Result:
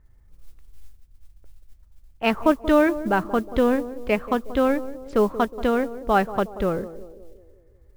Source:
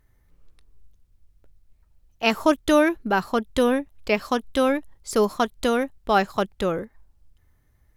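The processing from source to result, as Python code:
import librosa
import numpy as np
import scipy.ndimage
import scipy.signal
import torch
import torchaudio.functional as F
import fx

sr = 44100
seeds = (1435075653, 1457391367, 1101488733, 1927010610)

p1 = fx.wiener(x, sr, points=9)
p2 = scipy.signal.sosfilt(scipy.signal.butter(2, 2700.0, 'lowpass', fs=sr, output='sos'), p1)
p3 = fx.low_shelf(p2, sr, hz=99.0, db=9.0)
p4 = p3 + fx.echo_banded(p3, sr, ms=182, feedback_pct=56, hz=410.0, wet_db=-13, dry=0)
y = fx.mod_noise(p4, sr, seeds[0], snr_db=29)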